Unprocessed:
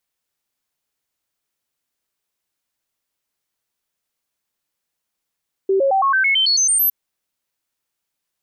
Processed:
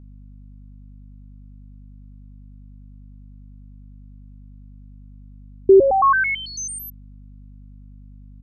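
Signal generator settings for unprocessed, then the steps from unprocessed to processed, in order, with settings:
stepped sine 387 Hz up, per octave 2, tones 11, 0.11 s, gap 0.00 s -13 dBFS
tilt EQ -6 dB/octave; comb 0.8 ms, depth 56%; hum 50 Hz, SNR 18 dB

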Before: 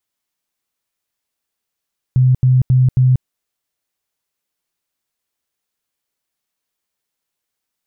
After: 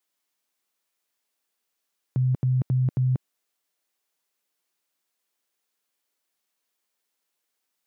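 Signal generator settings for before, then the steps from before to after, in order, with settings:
tone bursts 128 Hz, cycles 24, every 0.27 s, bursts 4, -8 dBFS
high-pass 230 Hz 12 dB/octave

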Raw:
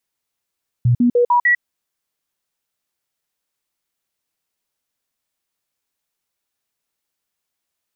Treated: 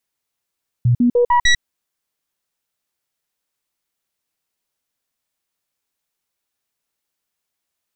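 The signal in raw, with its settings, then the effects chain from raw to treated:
stepped sine 121 Hz up, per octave 1, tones 5, 0.10 s, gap 0.05 s -10.5 dBFS
tracing distortion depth 0.12 ms

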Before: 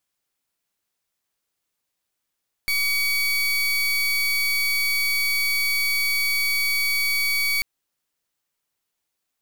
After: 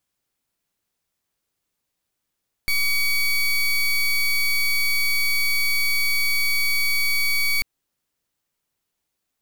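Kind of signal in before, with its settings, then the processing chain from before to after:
pulse 2.26 kHz, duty 30% -22 dBFS 4.94 s
bass shelf 400 Hz +7 dB

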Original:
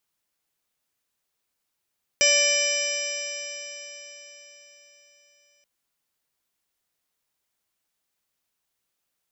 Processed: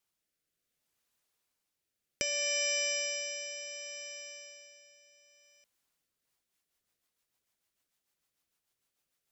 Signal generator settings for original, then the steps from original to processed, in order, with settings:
stretched partials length 3.43 s, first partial 576 Hz, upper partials -19.5/-7.5/3/-1/-13/-16/1/2.5/-16.5/-3 dB, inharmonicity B 0.0034, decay 4.35 s, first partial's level -23.5 dB
compression 10:1, threshold -27 dBFS; rotary cabinet horn 0.65 Hz, later 6.7 Hz, at 5.87 s

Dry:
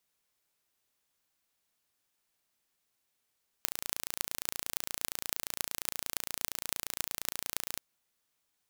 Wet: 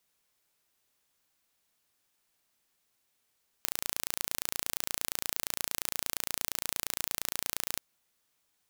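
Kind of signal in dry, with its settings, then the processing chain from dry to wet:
pulse train 28.6 per s, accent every 8, -2 dBFS 4.15 s
in parallel at -1 dB: peak limiter -10.5 dBFS; on the sum: waveshaping leveller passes 1; saturation -2 dBFS

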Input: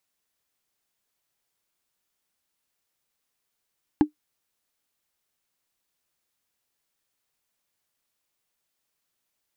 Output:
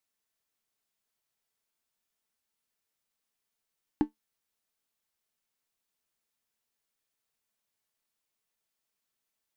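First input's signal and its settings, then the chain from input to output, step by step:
wood hit, lowest mode 301 Hz, decay 0.11 s, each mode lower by 9 dB, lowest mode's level -9 dB
feedback comb 220 Hz, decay 0.15 s, harmonics all, mix 60%

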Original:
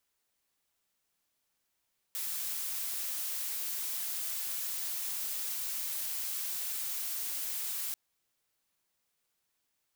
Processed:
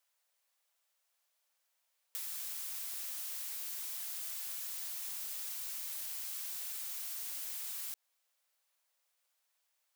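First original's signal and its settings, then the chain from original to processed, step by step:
noise blue, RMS -36 dBFS 5.79 s
compression, threshold -38 dBFS; brick-wall FIR high-pass 470 Hz

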